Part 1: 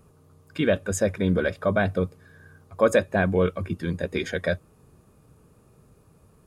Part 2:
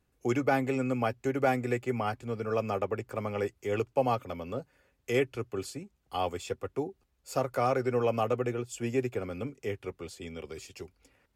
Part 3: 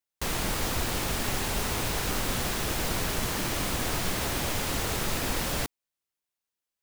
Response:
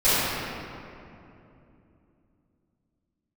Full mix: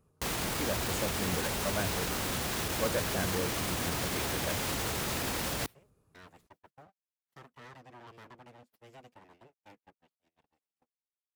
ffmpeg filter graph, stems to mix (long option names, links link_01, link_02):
-filter_complex "[0:a]volume=-13.5dB[link_01];[1:a]aeval=exprs='abs(val(0))':channel_layout=same,highpass=130,asoftclip=type=tanh:threshold=-29.5dB,volume=-16dB[link_02];[2:a]highpass=58,volume=2dB[link_03];[link_02][link_03]amix=inputs=2:normalize=0,agate=range=-31dB:threshold=-59dB:ratio=16:detection=peak,alimiter=limit=-24dB:level=0:latency=1,volume=0dB[link_04];[link_01][link_04]amix=inputs=2:normalize=0"